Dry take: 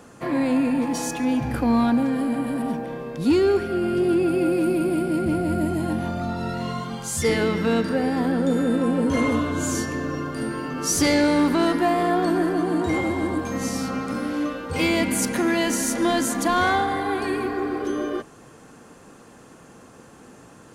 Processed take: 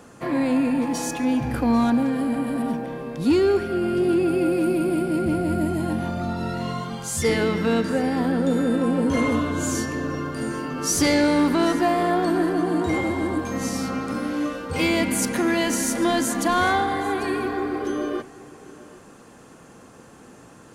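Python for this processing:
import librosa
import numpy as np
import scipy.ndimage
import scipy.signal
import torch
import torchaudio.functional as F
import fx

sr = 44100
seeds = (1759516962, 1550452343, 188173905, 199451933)

y = x + 10.0 ** (-19.5 / 20.0) * np.pad(x, (int(792 * sr / 1000.0), 0))[:len(x)]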